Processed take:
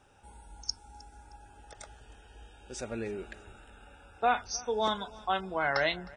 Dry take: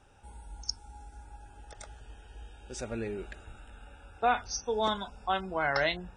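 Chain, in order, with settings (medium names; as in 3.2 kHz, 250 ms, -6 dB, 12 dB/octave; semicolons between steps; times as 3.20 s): bass shelf 84 Hz -8 dB; feedback delay 311 ms, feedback 34%, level -22.5 dB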